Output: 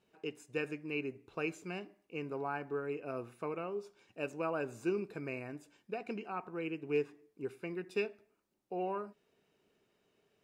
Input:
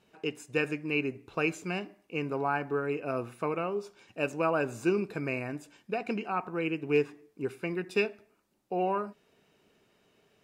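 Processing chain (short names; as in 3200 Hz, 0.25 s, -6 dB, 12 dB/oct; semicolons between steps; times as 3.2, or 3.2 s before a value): bell 400 Hz +3 dB 0.77 oct; gain -9 dB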